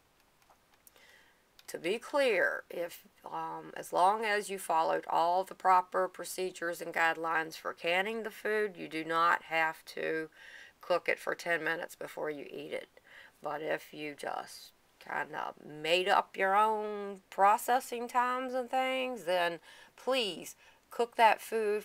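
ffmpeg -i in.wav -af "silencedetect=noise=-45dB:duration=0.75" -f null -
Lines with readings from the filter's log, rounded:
silence_start: 0.00
silence_end: 0.87 | silence_duration: 0.87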